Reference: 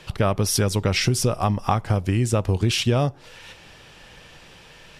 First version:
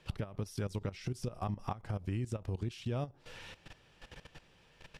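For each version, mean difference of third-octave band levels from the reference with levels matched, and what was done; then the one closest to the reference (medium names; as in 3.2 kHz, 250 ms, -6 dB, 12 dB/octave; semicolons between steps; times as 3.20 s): 4.5 dB: compression 8:1, threshold -29 dBFS, peak gain reduction 13.5 dB; bass shelf 440 Hz +3 dB; level held to a coarse grid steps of 15 dB; treble shelf 6.3 kHz -4.5 dB; trim -4 dB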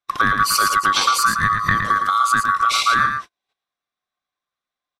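13.0 dB: split-band scrambler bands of 1 kHz; in parallel at +2 dB: compression 5:1, threshold -29 dBFS, peak gain reduction 12.5 dB; on the sum: delay 113 ms -6 dB; gate -28 dBFS, range -49 dB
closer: first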